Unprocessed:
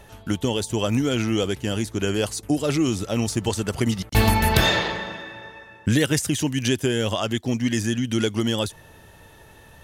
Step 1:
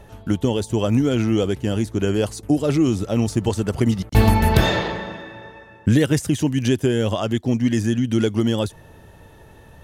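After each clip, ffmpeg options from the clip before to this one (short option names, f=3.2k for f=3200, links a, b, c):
-af "tiltshelf=f=1.1k:g=4.5"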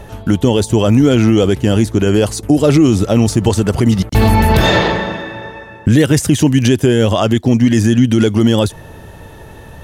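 -af "alimiter=level_in=12dB:limit=-1dB:release=50:level=0:latency=1,volume=-1dB"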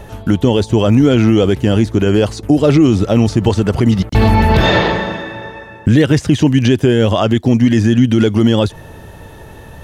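-filter_complex "[0:a]acrossover=split=5400[a][b];[b]acompressor=threshold=-43dB:ratio=4:attack=1:release=60[c];[a][c]amix=inputs=2:normalize=0"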